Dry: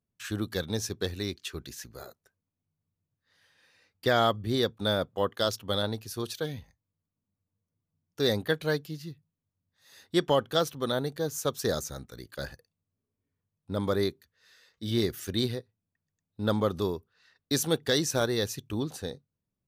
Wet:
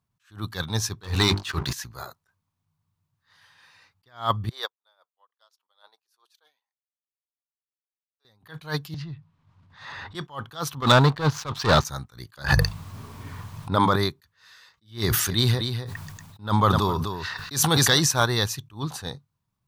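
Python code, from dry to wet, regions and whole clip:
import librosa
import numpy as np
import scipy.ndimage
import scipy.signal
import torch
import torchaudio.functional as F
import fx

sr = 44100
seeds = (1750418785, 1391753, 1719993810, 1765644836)

y = fx.chain(x, sr, fx.high_shelf(hz=11000.0, db=-10.5),
    fx.hum_notches(base_hz=50, count=10),
    fx.leveller(passes=3), at=(1.03, 1.73))
y = fx.chain(y, sr, fx.highpass(hz=490.0, slope=24),
    fx.upward_expand(threshold_db=-47.0, expansion=2.5), at=(4.49, 8.25))
y = fx.chain(y, sr, fx.lowpass(hz=3300.0, slope=12),
    fx.transient(attack_db=-9, sustain_db=8),
    fx.band_squash(depth_pct=100), at=(8.94, 10.15))
y = fx.chain(y, sr, fx.lowpass(hz=4300.0, slope=24),
    fx.leveller(passes=3), at=(10.82, 11.85))
y = fx.chain(y, sr, fx.high_shelf(hz=5400.0, db=-6.5),
    fx.hum_notches(base_hz=50, count=4),
    fx.env_flatten(amount_pct=100), at=(12.44, 13.96))
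y = fx.chain(y, sr, fx.echo_single(ms=253, db=-15.0),
    fx.sustainer(db_per_s=33.0), at=(15.04, 18.12))
y = fx.graphic_eq(y, sr, hz=(125, 250, 500, 1000, 4000), db=(6, -4, -8, 12, 3))
y = fx.attack_slew(y, sr, db_per_s=200.0)
y = F.gain(torch.from_numpy(y), 5.0).numpy()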